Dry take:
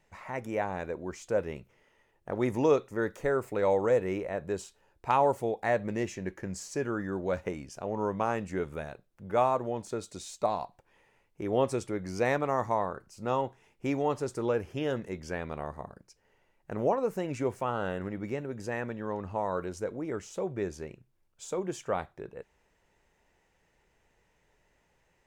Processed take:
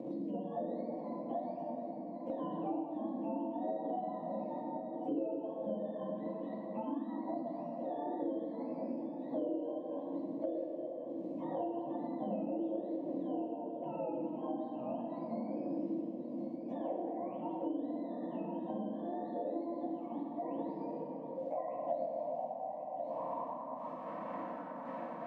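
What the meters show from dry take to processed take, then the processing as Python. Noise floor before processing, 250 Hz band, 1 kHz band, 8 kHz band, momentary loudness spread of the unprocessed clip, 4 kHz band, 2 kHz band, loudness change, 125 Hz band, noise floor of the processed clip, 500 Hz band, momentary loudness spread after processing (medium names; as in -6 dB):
-71 dBFS, -1.5 dB, -8.0 dB, under -30 dB, 12 LU, under -15 dB, under -20 dB, -8.0 dB, -14.0 dB, -44 dBFS, -8.5 dB, 4 LU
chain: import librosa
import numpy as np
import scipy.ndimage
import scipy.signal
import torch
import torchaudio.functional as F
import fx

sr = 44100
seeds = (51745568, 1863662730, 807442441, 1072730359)

p1 = fx.octave_mirror(x, sr, pivot_hz=610.0)
p2 = fx.dmg_wind(p1, sr, seeds[0], corner_hz=340.0, level_db=-43.0)
p3 = scipy.signal.sosfilt(scipy.signal.butter(2, 140.0, 'highpass', fs=sr, output='sos'), p2)
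p4 = fx.hum_notches(p3, sr, base_hz=50, count=4)
p5 = fx.quant_dither(p4, sr, seeds[1], bits=8, dither='none')
p6 = p4 + (p5 * 10.0 ** (-11.0 / 20.0))
p7 = fx.fixed_phaser(p6, sr, hz=380.0, stages=6)
p8 = fx.notch_comb(p7, sr, f0_hz=410.0)
p9 = fx.filter_sweep_bandpass(p8, sr, from_hz=350.0, to_hz=1400.0, start_s=20.32, end_s=24.18, q=6.8)
p10 = p9 + fx.echo_single(p9, sr, ms=1085, db=-19.0, dry=0)
p11 = fx.rev_plate(p10, sr, seeds[2], rt60_s=1.9, hf_ratio=0.5, predelay_ms=0, drr_db=-4.0)
p12 = fx.band_squash(p11, sr, depth_pct=100)
y = p12 * 10.0 ** (5.0 / 20.0)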